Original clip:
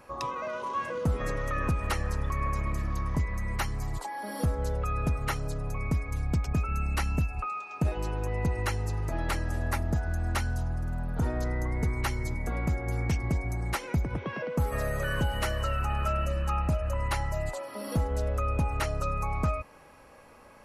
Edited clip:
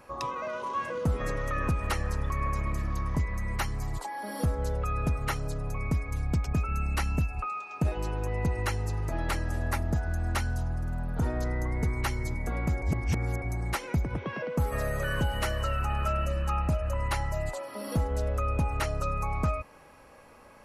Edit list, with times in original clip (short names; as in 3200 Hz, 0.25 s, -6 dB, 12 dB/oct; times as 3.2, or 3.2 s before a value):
12.82–13.42 reverse